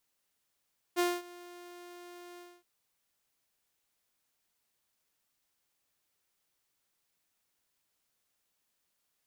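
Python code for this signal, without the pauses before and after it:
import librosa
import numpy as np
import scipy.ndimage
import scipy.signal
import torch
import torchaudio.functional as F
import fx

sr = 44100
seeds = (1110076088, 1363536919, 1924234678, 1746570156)

y = fx.adsr_tone(sr, wave='saw', hz=352.0, attack_ms=34.0, decay_ms=225.0, sustain_db=-22.5, held_s=1.42, release_ms=252.0, level_db=-22.5)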